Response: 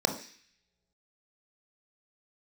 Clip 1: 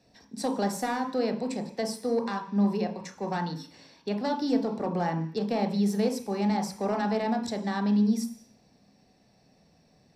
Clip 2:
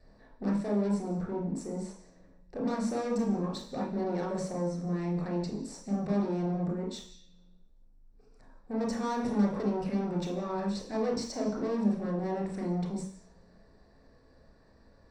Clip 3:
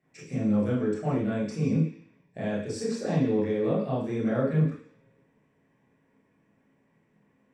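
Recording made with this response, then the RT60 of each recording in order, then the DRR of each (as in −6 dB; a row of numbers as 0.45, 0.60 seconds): 1; non-exponential decay, non-exponential decay, non-exponential decay; 5.0, −3.0, −9.5 decibels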